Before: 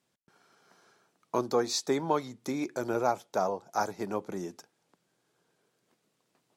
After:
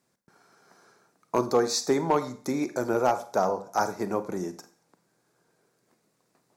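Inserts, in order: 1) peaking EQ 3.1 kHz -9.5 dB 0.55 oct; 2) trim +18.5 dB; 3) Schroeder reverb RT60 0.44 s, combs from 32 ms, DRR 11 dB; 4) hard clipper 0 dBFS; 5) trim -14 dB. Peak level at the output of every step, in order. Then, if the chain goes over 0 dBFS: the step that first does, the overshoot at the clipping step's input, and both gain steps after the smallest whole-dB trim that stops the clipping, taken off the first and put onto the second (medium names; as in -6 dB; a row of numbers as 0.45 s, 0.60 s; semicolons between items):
-14.0 dBFS, +4.5 dBFS, +4.5 dBFS, 0.0 dBFS, -14.0 dBFS; step 2, 4.5 dB; step 2 +13.5 dB, step 5 -9 dB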